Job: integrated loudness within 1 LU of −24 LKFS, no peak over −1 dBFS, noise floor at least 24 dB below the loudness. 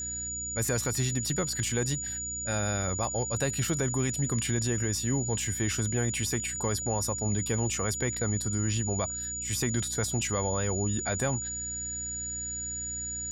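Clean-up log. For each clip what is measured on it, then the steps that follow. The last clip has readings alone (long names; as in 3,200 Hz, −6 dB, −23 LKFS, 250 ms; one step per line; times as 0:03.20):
mains hum 60 Hz; hum harmonics up to 300 Hz; level of the hum −43 dBFS; interfering tone 6,900 Hz; level of the tone −33 dBFS; integrated loudness −29.5 LKFS; sample peak −17.0 dBFS; target loudness −24.0 LKFS
→ mains-hum notches 60/120/180/240/300 Hz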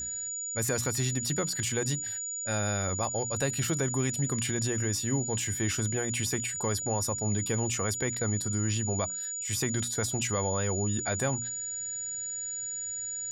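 mains hum none found; interfering tone 6,900 Hz; level of the tone −33 dBFS
→ notch filter 6,900 Hz, Q 30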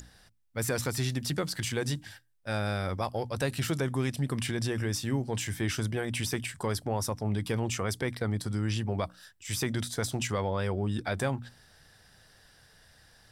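interfering tone none found; integrated loudness −32.0 LKFS; sample peak −17.5 dBFS; target loudness −24.0 LKFS
→ level +8 dB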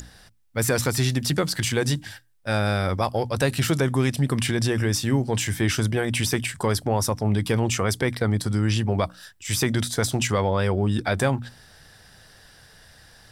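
integrated loudness −24.0 LKFS; sample peak −9.5 dBFS; background noise floor −52 dBFS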